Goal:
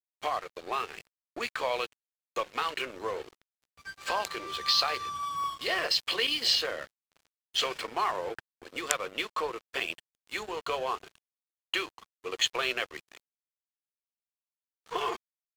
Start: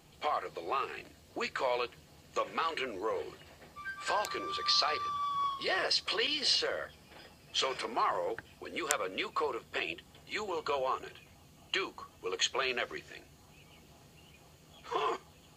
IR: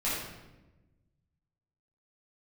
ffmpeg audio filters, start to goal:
-af "adynamicequalizer=threshold=0.00447:dfrequency=3000:dqfactor=1.1:tfrequency=3000:tqfactor=1.1:attack=5:release=100:ratio=0.375:range=1.5:mode=boostabove:tftype=bell,aeval=exprs='sgn(val(0))*max(abs(val(0))-0.00631,0)':channel_layout=same,volume=2.5dB"

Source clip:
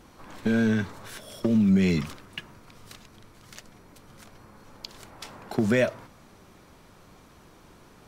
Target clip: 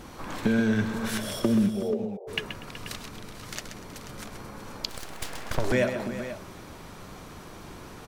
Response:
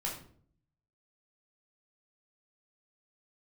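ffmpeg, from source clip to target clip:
-filter_complex "[0:a]asplit=3[link_01][link_02][link_03];[link_01]afade=type=out:start_time=1.67:duration=0.02[link_04];[link_02]asuperpass=centerf=580:order=12:qfactor=1.4,afade=type=in:start_time=1.67:duration=0.02,afade=type=out:start_time=2.27:duration=0.02[link_05];[link_03]afade=type=in:start_time=2.27:duration=0.02[link_06];[link_04][link_05][link_06]amix=inputs=3:normalize=0,acompressor=threshold=-34dB:ratio=2.5,asplit=2[link_07][link_08];[link_08]aecho=0:1:129|242|375|485:0.355|0.112|0.2|0.224[link_09];[link_07][link_09]amix=inputs=2:normalize=0,asettb=1/sr,asplit=3[link_10][link_11][link_12];[link_10]atrim=end=4.894[link_13];[link_11]atrim=start=4.89:end=5.72,asetpts=PTS-STARTPTS,afade=type=in:duration=0.004:curve=qsin,afade=type=out:start_time=0.826:duration=0.004:curve=qsin,aeval=exprs='abs(val(0))':channel_layout=same[link_14];[link_12]atrim=start=5.716[link_15];[link_13][link_14]acrossfade=duration=0.004:curve1=hsin:curve2=qsin[link_16];[link_16][link_15]acrossfade=duration=0.004:curve1=qsin:curve2=hsin,volume=8.5dB"

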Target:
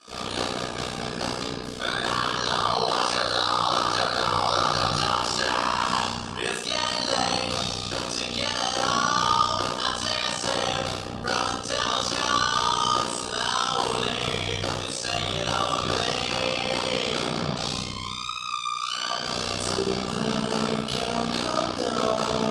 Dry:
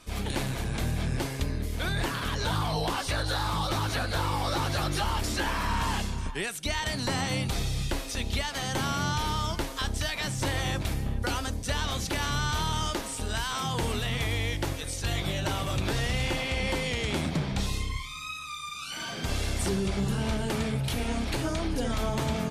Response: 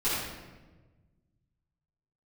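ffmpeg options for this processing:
-filter_complex "[0:a]highpass=260,equalizer=frequency=310:width_type=q:width=4:gain=-8,equalizer=frequency=1200:width_type=q:width=4:gain=8,equalizer=frequency=2000:width_type=q:width=4:gain=-9,equalizer=frequency=3000:width_type=q:width=4:gain=3,equalizer=frequency=4900:width_type=q:width=4:gain=7,lowpass=frequency=9200:width=0.5412,lowpass=frequency=9200:width=1.3066[link_01];[1:a]atrim=start_sample=2205,asetrate=70560,aresample=44100[link_02];[link_01][link_02]afir=irnorm=-1:irlink=0,tremolo=f=61:d=0.857,volume=2.5dB"

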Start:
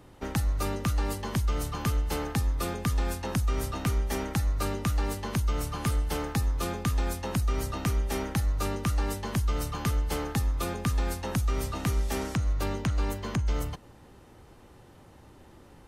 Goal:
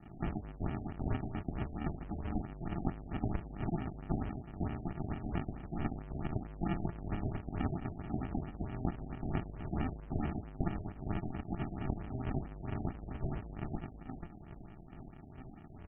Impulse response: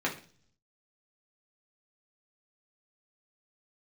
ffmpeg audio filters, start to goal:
-filter_complex "[0:a]equalizer=frequency=160:width=1.7:gain=-12.5,volume=32.5dB,asoftclip=hard,volume=-32.5dB,flanger=delay=18.5:depth=5.4:speed=0.3,acrossover=split=490[link_01][link_02];[link_01]aeval=exprs='val(0)*(1-0.7/2+0.7/2*cos(2*PI*2.3*n/s))':channel_layout=same[link_03];[link_02]aeval=exprs='val(0)*(1-0.7/2-0.7/2*cos(2*PI*2.3*n/s))':channel_layout=same[link_04];[link_03][link_04]amix=inputs=2:normalize=0,aecho=1:1:490|980:0.224|0.0358,acompressor=threshold=-45dB:ratio=5,aemphasis=mode=production:type=riaa,aresample=16000,acrusher=samples=31:mix=1:aa=0.000001,aresample=44100,afftfilt=real='re*lt(b*sr/1024,750*pow(3300/750,0.5+0.5*sin(2*PI*4.5*pts/sr)))':imag='im*lt(b*sr/1024,750*pow(3300/750,0.5+0.5*sin(2*PI*4.5*pts/sr)))':win_size=1024:overlap=0.75,volume=13.5dB"

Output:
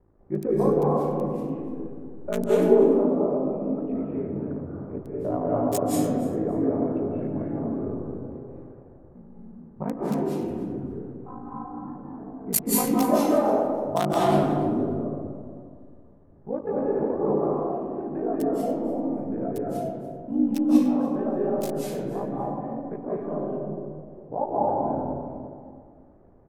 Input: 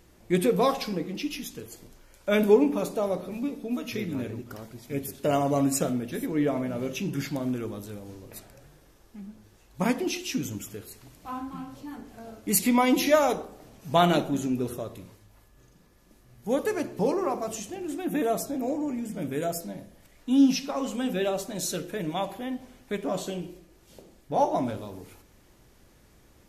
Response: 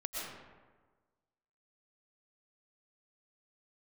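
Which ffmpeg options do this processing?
-filter_complex "[0:a]highshelf=frequency=9900:gain=8,bandreject=frequency=50:width_type=h:width=6,bandreject=frequency=100:width_type=h:width=6,bandreject=frequency=150:width_type=h:width=6,bandreject=frequency=200:width_type=h:width=6,bandreject=frequency=250:width_type=h:width=6,acrossover=split=420|1200[link_01][link_02][link_03];[link_03]aeval=exprs='val(0)*gte(abs(val(0)),0.0891)':channel_layout=same[link_04];[link_01][link_02][link_04]amix=inputs=3:normalize=0,aeval=exprs='val(0)*sin(2*PI*27*n/s)':channel_layout=same,aecho=1:1:291|582:0.126|0.0214[link_05];[1:a]atrim=start_sample=2205,asetrate=27783,aresample=44100[link_06];[link_05][link_06]afir=irnorm=-1:irlink=0"

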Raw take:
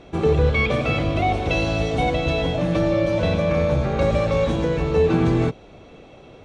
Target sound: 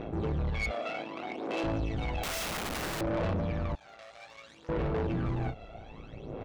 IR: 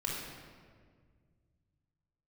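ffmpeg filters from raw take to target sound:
-filter_complex "[0:a]tremolo=f=110:d=0.75,asplit=2[link_01][link_02];[link_02]adelay=33,volume=-10.5dB[link_03];[link_01][link_03]amix=inputs=2:normalize=0,aphaser=in_gain=1:out_gain=1:delay=1.5:decay=0.69:speed=0.62:type=sinusoidal,lowpass=frequency=2400:poles=1,asoftclip=type=tanh:threshold=-20dB,acompressor=threshold=-27dB:ratio=6,asettb=1/sr,asplit=3[link_04][link_05][link_06];[link_04]atrim=end=3.754[link_07];[link_05]atrim=start=3.75:end=4.69,asetpts=PTS-STARTPTS,afade=type=in:duration=0.004:curve=qsin,afade=type=out:start_time=0.936:duration=0.004:curve=qsin,aderivative[link_08];[link_06]atrim=start=4.686[link_09];[link_07][link_08]acrossfade=duration=0.004:curve1=hsin:curve2=qsin[link_10];[link_10][link_09]acrossfade=duration=0.004:curve1=qsin:curve2=hsin,alimiter=level_in=3.5dB:limit=-24dB:level=0:latency=1:release=85,volume=-3.5dB,asettb=1/sr,asplit=3[link_11][link_12][link_13];[link_11]atrim=end=0.714[link_14];[link_12]atrim=start=0.71:end=1.64,asetpts=PTS-STARTPTS,afade=type=in:duration=0.004:curve=qsin,afade=type=out:start_time=0.926:duration=0.004:curve=qsin,highpass=frequency=250:width=0.5412,highpass=frequency=250:width=1.3066[link_15];[link_13]atrim=start=1.636[link_16];[link_14][link_15]acrossfade=duration=0.004:curve1=hsin:curve2=qsin[link_17];[link_17][link_16]acrossfade=duration=0.004:curve1=qsin:curve2=hsin,asettb=1/sr,asplit=3[link_18][link_19][link_20];[link_18]atrim=end=2.234[link_21];[link_19]atrim=start=2.23:end=3.01,asetpts=PTS-STARTPTS,afade=type=in:duration=0.004:curve=qsin,afade=type=out:start_time=0.776:duration=0.004:curve=qsin,aeval=exprs='(mod(35.5*val(0)+1,2)-1)/35.5':channel_layout=same[link_22];[link_20]atrim=start=3.006[link_23];[link_21][link_22]acrossfade=duration=0.004:curve1=hsin:curve2=qsin[link_24];[link_24][link_23]acrossfade=duration=0.004:curve1=qsin:curve2=hsin"

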